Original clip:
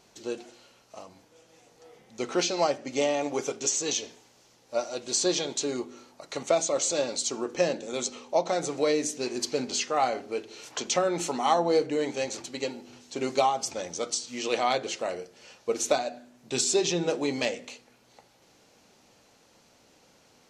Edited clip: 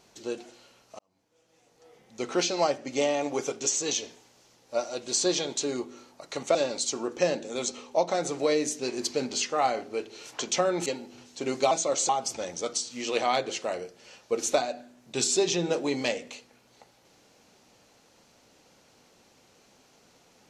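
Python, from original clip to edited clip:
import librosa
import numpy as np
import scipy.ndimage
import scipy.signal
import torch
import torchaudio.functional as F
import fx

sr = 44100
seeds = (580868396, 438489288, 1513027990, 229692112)

y = fx.edit(x, sr, fx.fade_in_span(start_s=0.99, length_s=1.34),
    fx.move(start_s=6.55, length_s=0.38, to_s=13.46),
    fx.cut(start_s=11.24, length_s=1.37), tone=tone)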